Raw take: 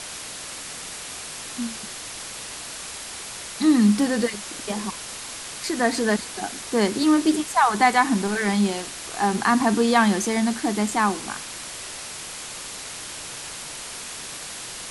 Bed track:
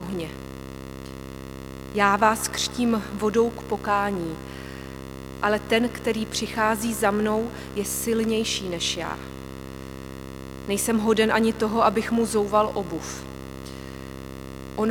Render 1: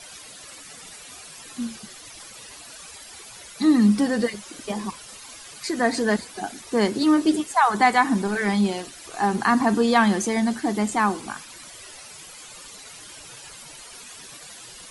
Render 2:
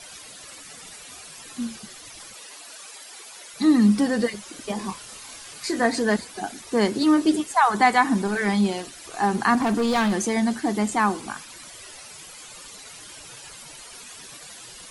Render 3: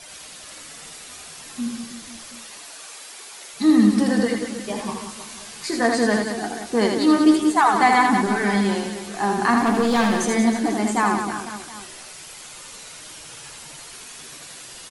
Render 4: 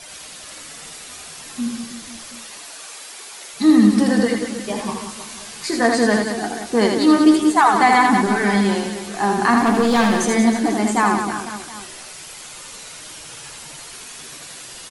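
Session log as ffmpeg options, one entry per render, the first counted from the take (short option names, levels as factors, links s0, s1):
-af "afftdn=nr=13:nf=-36"
-filter_complex "[0:a]asettb=1/sr,asplit=3[s0][s1][s2];[s0]atrim=end=2.344[s3];[s1]atrim=start=2.34:end=3.53,asetpts=PTS-STARTPTS,afade=t=in:d=0.004:c=qsin,afade=t=out:st=1.186:d=0.004:c=qsin,highpass=330[s4];[s2]atrim=start=3.526[s5];[s3][s4]acrossfade=d=0.004:c1=hsin:c2=qsin[s6];[s6][s5]acrossfade=d=0.004:c1=qsin:c2=hsin,asettb=1/sr,asplit=3[s7][s8][s9];[s7]atrim=end=4.764[s10];[s8]atrim=start=4.76:end=5.86,asetpts=PTS-STARTPTS,afade=t=in:d=0.004:c=qsin,afade=t=out:st=1.096:d=0.004:c=qsin,asplit=2[s11][s12];[s12]adelay=26,volume=0.501[s13];[s11][s13]amix=inputs=2:normalize=0,atrim=end_sample=48510[s14];[s9]atrim=start=5.856[s15];[s10][s14]acrossfade=d=0.004:c1=hsin:c2=qsin[s16];[s16][s15]acrossfade=d=0.004:c1=qsin:c2=hsin,asettb=1/sr,asplit=3[s17][s18][s19];[s17]atrim=end=9.554[s20];[s18]atrim=start=9.55:end=10.13,asetpts=PTS-STARTPTS,afade=t=in:d=0.004:c=qsin,afade=t=out:st=0.576:d=0.004:c=qsin,asoftclip=type=hard:threshold=0.119[s21];[s19]atrim=start=10.126[s22];[s20][s21]acrossfade=d=0.004:c1=hsin:c2=qsin[s23];[s23][s22]acrossfade=d=0.004:c1=qsin:c2=hsin"
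-filter_complex "[0:a]asplit=2[s0][s1];[s1]adelay=13,volume=0.282[s2];[s0][s2]amix=inputs=2:normalize=0,aecho=1:1:80|184|319.2|495|723.4:0.631|0.398|0.251|0.158|0.1"
-af "volume=1.41,alimiter=limit=0.708:level=0:latency=1"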